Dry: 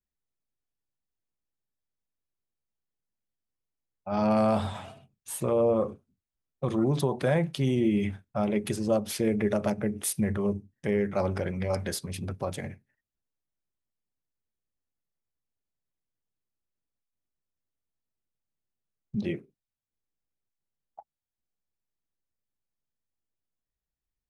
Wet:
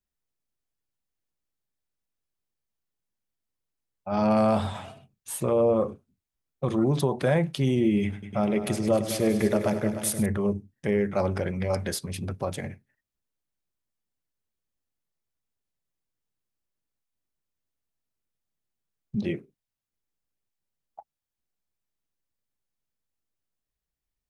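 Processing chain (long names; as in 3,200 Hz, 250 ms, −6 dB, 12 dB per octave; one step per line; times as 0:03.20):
0:08.02–0:10.26: echo machine with several playback heads 102 ms, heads all three, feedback 42%, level −13.5 dB
level +2 dB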